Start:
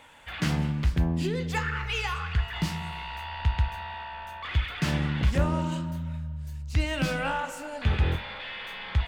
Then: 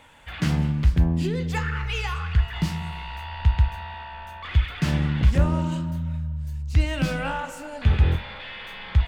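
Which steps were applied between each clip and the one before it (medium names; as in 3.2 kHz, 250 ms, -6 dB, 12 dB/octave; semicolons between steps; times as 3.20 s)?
bass shelf 200 Hz +7 dB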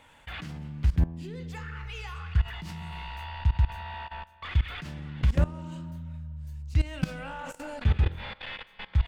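level held to a coarse grid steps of 19 dB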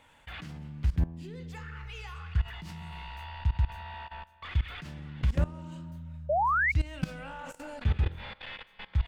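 painted sound rise, 6.29–6.72 s, 560–2300 Hz -22 dBFS; trim -3.5 dB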